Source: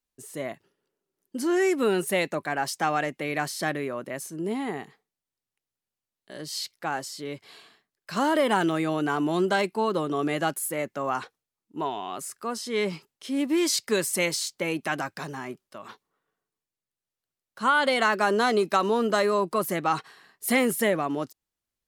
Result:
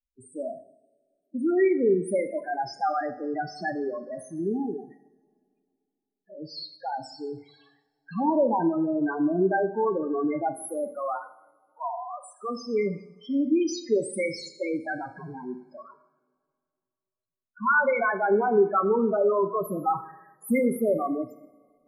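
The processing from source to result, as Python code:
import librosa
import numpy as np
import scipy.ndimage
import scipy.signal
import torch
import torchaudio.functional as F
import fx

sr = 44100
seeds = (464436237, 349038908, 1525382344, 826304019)

y = fx.cheby1_bandpass(x, sr, low_hz=500.0, high_hz=2700.0, order=5, at=(10.91, 12.23), fade=0.02)
y = fx.spec_topn(y, sr, count=4)
y = fx.rev_double_slope(y, sr, seeds[0], early_s=0.68, late_s=2.4, knee_db=-21, drr_db=8.0)
y = F.gain(torch.from_numpy(y), 2.0).numpy()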